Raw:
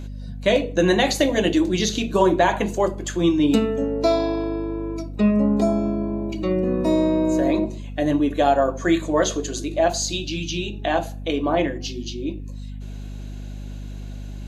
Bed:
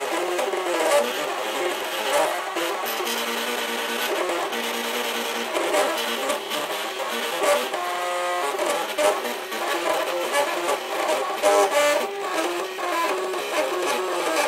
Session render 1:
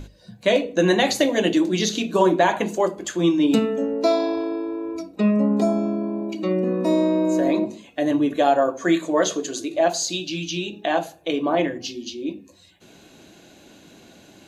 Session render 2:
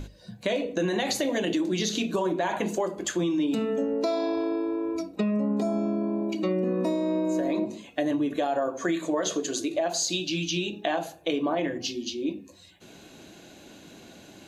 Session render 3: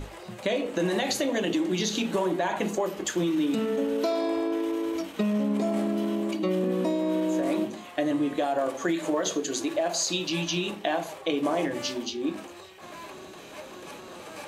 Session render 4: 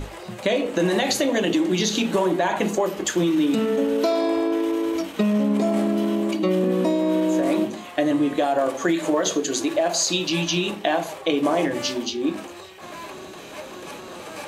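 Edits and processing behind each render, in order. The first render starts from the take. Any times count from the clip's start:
mains-hum notches 50/100/150/200/250 Hz
brickwall limiter −13 dBFS, peak gain reduction 7.5 dB; downward compressor, threshold −23 dBFS, peak gain reduction 6.5 dB
mix in bed −19.5 dB
level +5.5 dB

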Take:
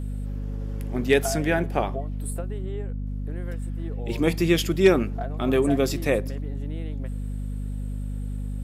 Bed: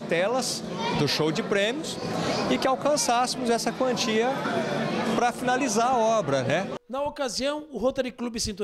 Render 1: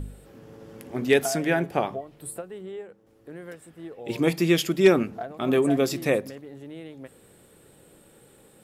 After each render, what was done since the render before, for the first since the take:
hum removal 50 Hz, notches 5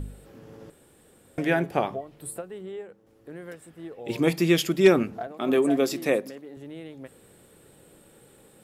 0:00.70–0:01.38: fill with room tone
0:05.27–0:06.57: Chebyshev high-pass filter 240 Hz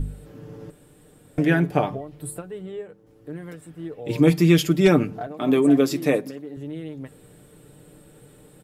low-shelf EQ 270 Hz +9 dB
comb filter 6.7 ms, depth 52%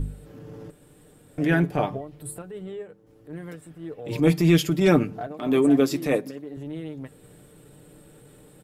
transient designer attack −8 dB, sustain −2 dB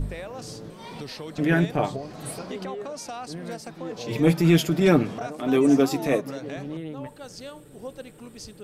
mix in bed −13 dB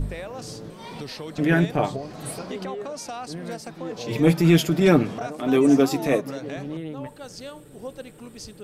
level +1.5 dB

